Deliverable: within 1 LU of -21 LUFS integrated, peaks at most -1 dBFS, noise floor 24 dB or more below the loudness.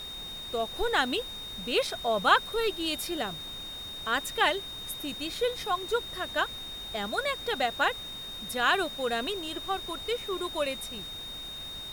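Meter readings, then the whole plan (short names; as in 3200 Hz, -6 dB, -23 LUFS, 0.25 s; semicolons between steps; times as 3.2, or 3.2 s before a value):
steady tone 3700 Hz; tone level -38 dBFS; noise floor -40 dBFS; noise floor target -54 dBFS; loudness -30.0 LUFS; peak -9.0 dBFS; loudness target -21.0 LUFS
-> notch 3700 Hz, Q 30; noise print and reduce 14 dB; gain +9 dB; limiter -1 dBFS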